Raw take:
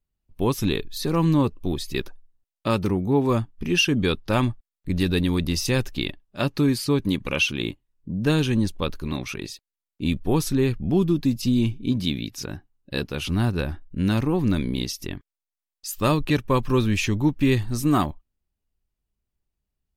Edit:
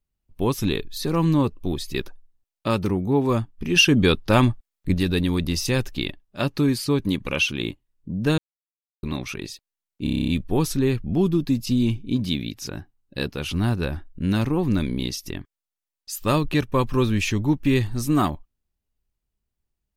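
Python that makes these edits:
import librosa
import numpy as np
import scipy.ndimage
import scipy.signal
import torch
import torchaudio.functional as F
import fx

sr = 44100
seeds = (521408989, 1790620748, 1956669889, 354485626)

y = fx.edit(x, sr, fx.clip_gain(start_s=3.76, length_s=1.18, db=4.5),
    fx.silence(start_s=8.38, length_s=0.65),
    fx.stutter(start_s=10.04, slice_s=0.03, count=9), tone=tone)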